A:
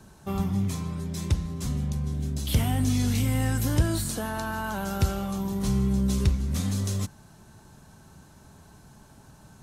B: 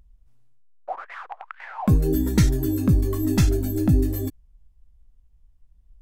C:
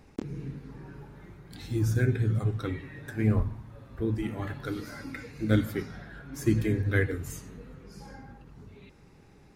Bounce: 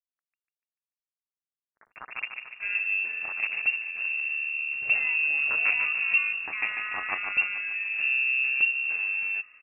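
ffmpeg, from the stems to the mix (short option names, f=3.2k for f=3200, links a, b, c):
-filter_complex "[0:a]bandreject=f=1.9k:w=22,adynamicequalizer=threshold=0.00355:dfrequency=1900:dqfactor=2:tfrequency=1900:tqfactor=2:attack=5:release=100:ratio=0.375:range=2:mode=cutabove:tftype=bell,adelay=2350,volume=-2dB[a];[2:a]acrusher=bits=2:mix=0:aa=0.5,agate=range=-28dB:threshold=-53dB:ratio=16:detection=peak,volume=0.5dB,asplit=2[b][c];[c]volume=-4.5dB[d];[b]highpass=f=1.2k:w=0.5412,highpass=f=1.2k:w=1.3066,acompressor=threshold=-38dB:ratio=2,volume=0dB[e];[d]aecho=0:1:146|292|438|584|730|876|1022|1168:1|0.52|0.27|0.141|0.0731|0.038|0.0198|0.0103[f];[a][e][f]amix=inputs=3:normalize=0,lowpass=f=2.4k:t=q:w=0.5098,lowpass=f=2.4k:t=q:w=0.6013,lowpass=f=2.4k:t=q:w=0.9,lowpass=f=2.4k:t=q:w=2.563,afreqshift=-2800"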